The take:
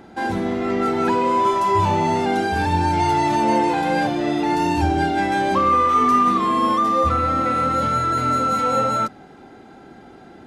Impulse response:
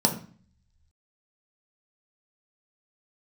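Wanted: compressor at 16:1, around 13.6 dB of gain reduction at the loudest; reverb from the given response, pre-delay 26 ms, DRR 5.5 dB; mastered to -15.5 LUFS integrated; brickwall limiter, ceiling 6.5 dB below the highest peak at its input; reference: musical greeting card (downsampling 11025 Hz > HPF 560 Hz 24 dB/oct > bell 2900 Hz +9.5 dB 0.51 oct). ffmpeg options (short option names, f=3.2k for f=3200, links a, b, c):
-filter_complex "[0:a]acompressor=threshold=-27dB:ratio=16,alimiter=level_in=1.5dB:limit=-24dB:level=0:latency=1,volume=-1.5dB,asplit=2[a][b];[1:a]atrim=start_sample=2205,adelay=26[c];[b][c]afir=irnorm=-1:irlink=0,volume=-18dB[d];[a][d]amix=inputs=2:normalize=0,aresample=11025,aresample=44100,highpass=f=560:w=0.5412,highpass=f=560:w=1.3066,equalizer=f=2.9k:t=o:w=0.51:g=9.5,volume=17.5dB"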